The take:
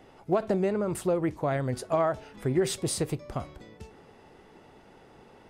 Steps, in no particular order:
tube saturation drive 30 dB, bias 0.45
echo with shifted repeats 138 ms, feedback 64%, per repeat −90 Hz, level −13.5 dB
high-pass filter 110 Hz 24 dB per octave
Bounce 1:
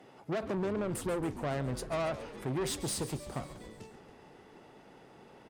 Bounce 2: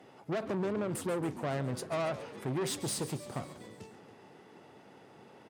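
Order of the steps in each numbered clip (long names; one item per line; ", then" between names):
tube saturation, then high-pass filter, then echo with shifted repeats
tube saturation, then echo with shifted repeats, then high-pass filter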